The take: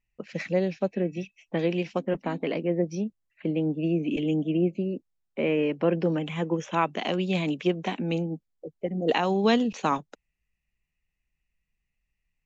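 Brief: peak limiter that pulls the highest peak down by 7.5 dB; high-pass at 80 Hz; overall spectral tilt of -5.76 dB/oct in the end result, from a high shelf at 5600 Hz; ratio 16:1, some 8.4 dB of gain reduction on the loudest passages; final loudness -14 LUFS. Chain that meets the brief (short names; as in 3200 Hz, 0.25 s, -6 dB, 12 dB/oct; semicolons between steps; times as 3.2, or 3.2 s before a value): HPF 80 Hz; high shelf 5600 Hz +4.5 dB; compressor 16:1, threshold -26 dBFS; gain +19.5 dB; limiter -3.5 dBFS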